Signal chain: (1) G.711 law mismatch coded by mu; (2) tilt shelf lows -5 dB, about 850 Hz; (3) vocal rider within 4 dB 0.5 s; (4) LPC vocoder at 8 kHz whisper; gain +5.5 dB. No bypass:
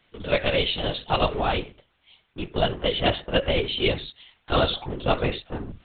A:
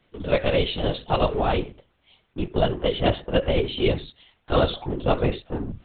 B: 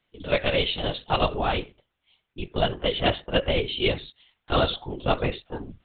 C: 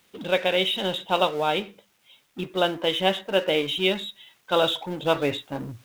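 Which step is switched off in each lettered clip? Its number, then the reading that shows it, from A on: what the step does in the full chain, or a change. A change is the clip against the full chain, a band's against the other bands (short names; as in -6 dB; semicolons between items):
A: 2, 4 kHz band -6.5 dB; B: 1, distortion -22 dB; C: 4, 125 Hz band -7.5 dB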